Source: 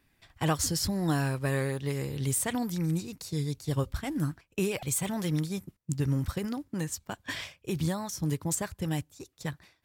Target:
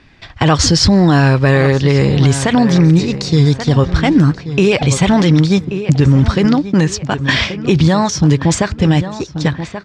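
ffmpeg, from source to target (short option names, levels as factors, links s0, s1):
-filter_complex "[0:a]lowpass=f=5500:w=0.5412,lowpass=f=5500:w=1.3066,asplit=2[s0][s1];[s1]adelay=1132,lowpass=f=2800:p=1,volume=0.2,asplit=2[s2][s3];[s3]adelay=1132,lowpass=f=2800:p=1,volume=0.37,asplit=2[s4][s5];[s5]adelay=1132,lowpass=f=2800:p=1,volume=0.37,asplit=2[s6][s7];[s7]adelay=1132,lowpass=f=2800:p=1,volume=0.37[s8];[s0][s2][s4][s6][s8]amix=inputs=5:normalize=0,alimiter=level_in=15:limit=0.891:release=50:level=0:latency=1,volume=0.891"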